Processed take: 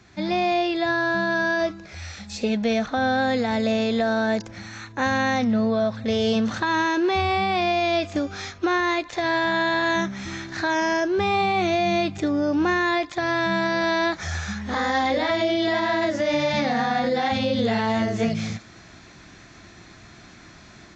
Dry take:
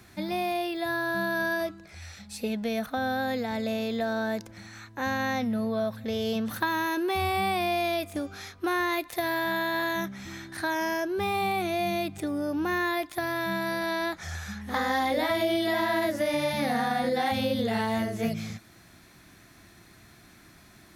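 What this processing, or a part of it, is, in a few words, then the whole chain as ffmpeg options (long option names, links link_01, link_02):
low-bitrate web radio: -af "dynaudnorm=framelen=130:gausssize=3:maxgain=7.5dB,alimiter=limit=-14dB:level=0:latency=1:release=112" -ar 16000 -c:a aac -b:a 32k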